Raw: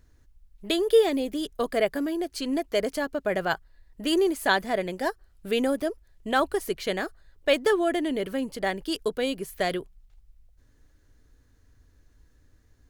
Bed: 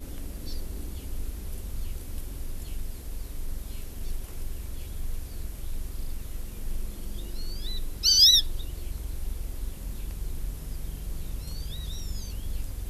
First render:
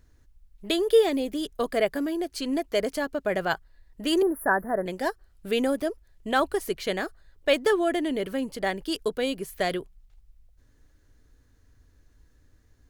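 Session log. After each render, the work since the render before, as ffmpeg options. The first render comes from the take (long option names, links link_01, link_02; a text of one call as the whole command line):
ffmpeg -i in.wav -filter_complex "[0:a]asettb=1/sr,asplit=3[link_01][link_02][link_03];[link_01]atrim=end=4.224[link_04];[link_02]atrim=start=4.22:end=4.86,asetpts=PTS-STARTPTS,afade=type=in:duration=0.004:curve=qsin,afade=type=out:start_time=0.636:duration=0.004:curve=qsin,asuperstop=centerf=4500:order=20:qfactor=0.55[link_05];[link_03]atrim=start=4.856[link_06];[link_04][link_05]acrossfade=duration=0.004:curve1=hsin:curve2=qsin[link_07];[link_07][link_06]acrossfade=duration=0.004:curve1=qsin:curve2=hsin" out.wav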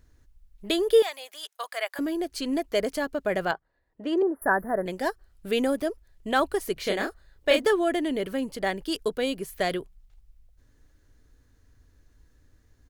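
ffmpeg -i in.wav -filter_complex "[0:a]asettb=1/sr,asplit=3[link_01][link_02][link_03];[link_01]atrim=end=1.024[link_04];[link_02]atrim=start=1.02:end=1.99,asetpts=PTS-STARTPTS,afade=type=in:duration=0.004:curve=qsin,afade=type=out:start_time=0.966:duration=0.004:curve=qsin,highpass=frequency=790:width=0.5412,highpass=frequency=790:width=1.3066[link_05];[link_03]atrim=start=1.986[link_06];[link_04][link_05]acrossfade=duration=0.004:curve1=hsin:curve2=qsin[link_07];[link_07][link_06]acrossfade=duration=0.004:curve1=qsin:curve2=hsin,asettb=1/sr,asplit=3[link_08][link_09][link_10];[link_08]atrim=end=3.514[link_11];[link_09]atrim=start=3.51:end=4.42,asetpts=PTS-STARTPTS,afade=type=in:duration=0.004:curve=qsin,afade=type=out:start_time=0.906:duration=0.004:curve=qsin,bandpass=frequency=550:width_type=q:width=0.64[link_12];[link_10]atrim=start=4.416[link_13];[link_11][link_12]acrossfade=duration=0.004:curve1=hsin:curve2=qsin[link_14];[link_14][link_13]acrossfade=duration=0.004:curve1=qsin:curve2=hsin,asplit=3[link_15][link_16][link_17];[link_15]afade=type=out:start_time=6.76:duration=0.02[link_18];[link_16]asplit=2[link_19][link_20];[link_20]adelay=30,volume=-3.5dB[link_21];[link_19][link_21]amix=inputs=2:normalize=0,afade=type=in:start_time=6.76:duration=0.02,afade=type=out:start_time=7.63:duration=0.02[link_22];[link_17]afade=type=in:start_time=7.63:duration=0.02[link_23];[link_18][link_22][link_23]amix=inputs=3:normalize=0" out.wav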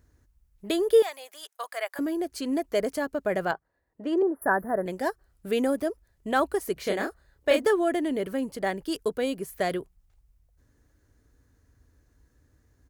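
ffmpeg -i in.wav -af "highpass=49,equalizer=frequency=3400:width=1:gain=-6" out.wav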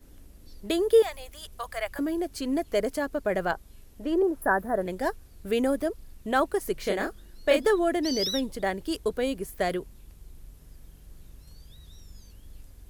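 ffmpeg -i in.wav -i bed.wav -filter_complex "[1:a]volume=-14dB[link_01];[0:a][link_01]amix=inputs=2:normalize=0" out.wav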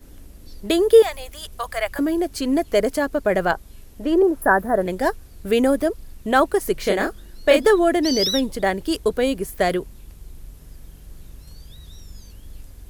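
ffmpeg -i in.wav -af "volume=7.5dB,alimiter=limit=-3dB:level=0:latency=1" out.wav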